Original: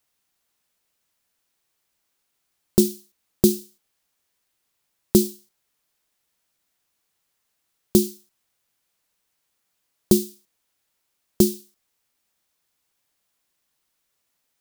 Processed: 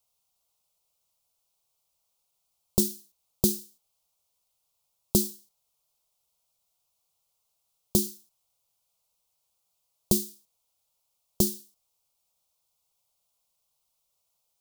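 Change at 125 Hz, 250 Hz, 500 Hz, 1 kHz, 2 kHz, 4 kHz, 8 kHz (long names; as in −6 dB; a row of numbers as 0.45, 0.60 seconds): −5.5 dB, −9.0 dB, −11.0 dB, −2.0 dB, can't be measured, −3.0 dB, −1.5 dB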